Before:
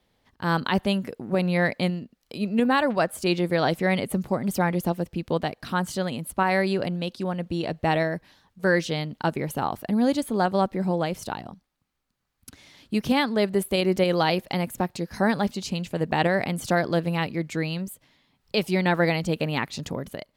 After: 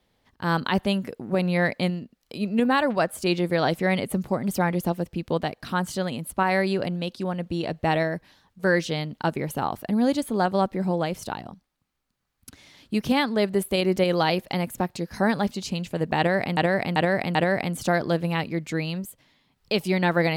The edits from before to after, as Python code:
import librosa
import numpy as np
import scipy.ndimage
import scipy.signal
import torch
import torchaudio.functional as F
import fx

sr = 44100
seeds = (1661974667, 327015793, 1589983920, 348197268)

y = fx.edit(x, sr, fx.repeat(start_s=16.18, length_s=0.39, count=4), tone=tone)